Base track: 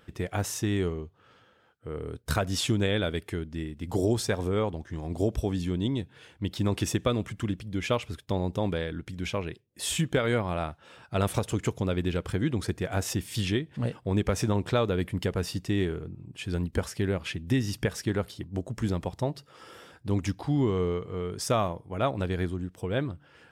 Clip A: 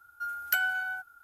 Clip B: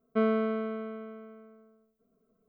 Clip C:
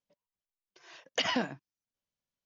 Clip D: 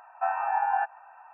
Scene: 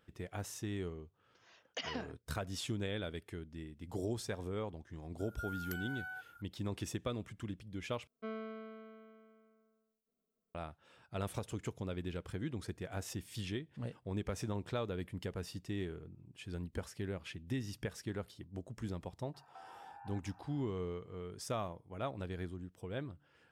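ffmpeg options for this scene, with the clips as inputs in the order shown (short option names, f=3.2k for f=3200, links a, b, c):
-filter_complex "[0:a]volume=-12.5dB[a];[1:a]acompressor=threshold=-39dB:ratio=6:attack=3.2:release=140:knee=1:detection=peak[b];[2:a]highshelf=f=2.1k:g=9.5[c];[4:a]acompressor=threshold=-39dB:ratio=6:attack=3.2:release=140:knee=1:detection=peak[d];[a]asplit=2[e][f];[e]atrim=end=8.074[g];[c]atrim=end=2.48,asetpts=PTS-STARTPTS,volume=-17.5dB[h];[f]atrim=start=10.546[i];[3:a]atrim=end=2.45,asetpts=PTS-STARTPTS,volume=-11.5dB,afade=t=in:d=0.004:c=hsin,afade=t=out:st=2.446:d=0.004:c=hsin,adelay=590[j];[b]atrim=end=1.23,asetpts=PTS-STARTPTS,volume=-3.5dB,afade=t=in:d=0.004:c=hsin,afade=t=out:st=1.226:d=0.004:c=hsin,adelay=5190[k];[d]atrim=end=1.33,asetpts=PTS-STARTPTS,volume=-12.5dB,afade=t=in:d=0.004:c=hsin,afade=t=out:st=1.326:d=0.004:c=hsin,adelay=19340[l];[g][h]acrossfade=d=0.004:c1=hsin:c2=hsin[m];[m][i]acrossfade=d=0.004:c1=hsin:c2=hsin[n];[n][j][k][l]amix=inputs=4:normalize=0"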